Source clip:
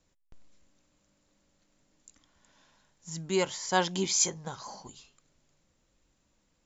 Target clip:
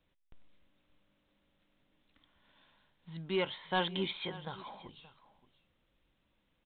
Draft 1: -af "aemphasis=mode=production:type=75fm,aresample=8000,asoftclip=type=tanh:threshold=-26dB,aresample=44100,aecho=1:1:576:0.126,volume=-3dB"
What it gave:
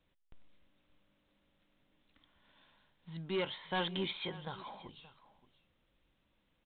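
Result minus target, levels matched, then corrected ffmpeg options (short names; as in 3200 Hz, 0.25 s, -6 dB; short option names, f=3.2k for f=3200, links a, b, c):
soft clip: distortion +6 dB
-af "aemphasis=mode=production:type=75fm,aresample=8000,asoftclip=type=tanh:threshold=-19.5dB,aresample=44100,aecho=1:1:576:0.126,volume=-3dB"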